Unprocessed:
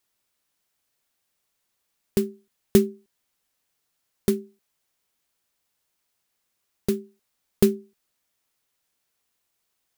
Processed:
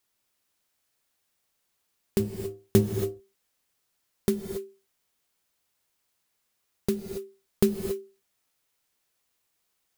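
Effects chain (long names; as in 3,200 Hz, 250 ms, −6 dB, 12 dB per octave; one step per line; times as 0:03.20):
0:02.19–0:02.92: sub-octave generator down 1 octave, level −2 dB
in parallel at −1.5 dB: downward compressor, threshold −25 dBFS, peak gain reduction 14 dB
on the sum: reverb whose tail is shaped and stops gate 300 ms rising, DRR 5.5 dB
level −6 dB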